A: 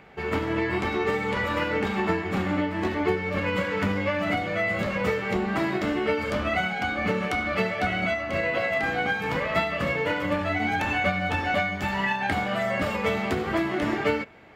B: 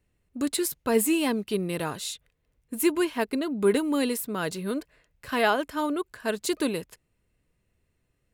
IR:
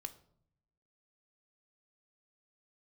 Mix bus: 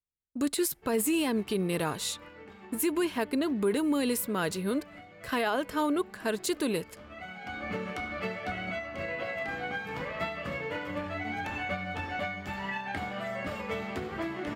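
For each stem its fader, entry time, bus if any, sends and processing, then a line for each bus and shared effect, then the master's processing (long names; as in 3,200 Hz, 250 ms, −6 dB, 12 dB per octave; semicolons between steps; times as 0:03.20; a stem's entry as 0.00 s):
−9.5 dB, 0.65 s, send −22 dB, automatic ducking −16 dB, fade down 0.95 s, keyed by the second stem
0.0 dB, 0.00 s, send −21.5 dB, noise gate −56 dBFS, range −30 dB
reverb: on, RT60 0.70 s, pre-delay 3 ms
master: brickwall limiter −19.5 dBFS, peak gain reduction 9.5 dB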